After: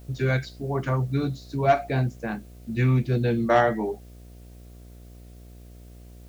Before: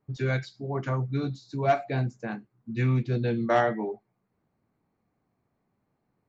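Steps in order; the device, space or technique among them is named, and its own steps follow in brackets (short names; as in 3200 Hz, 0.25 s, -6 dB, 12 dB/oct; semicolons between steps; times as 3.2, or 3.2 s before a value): video cassette with head-switching buzz (buzz 60 Hz, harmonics 12, -49 dBFS -7 dB/oct; white noise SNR 35 dB); gain +3.5 dB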